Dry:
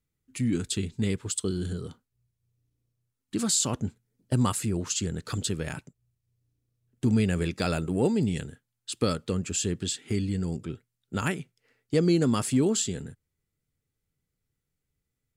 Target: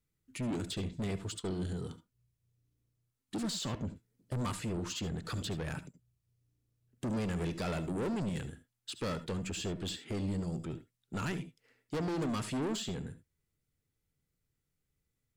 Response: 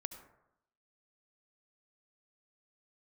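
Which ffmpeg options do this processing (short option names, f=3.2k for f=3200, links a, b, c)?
-filter_complex "[0:a]acrossover=split=4500[a][b];[b]acompressor=threshold=-47dB:ratio=6[c];[a][c]amix=inputs=2:normalize=0,asoftclip=type=tanh:threshold=-30.5dB[d];[1:a]atrim=start_sample=2205,atrim=end_sample=3969[e];[d][e]afir=irnorm=-1:irlink=0,volume=1.5dB"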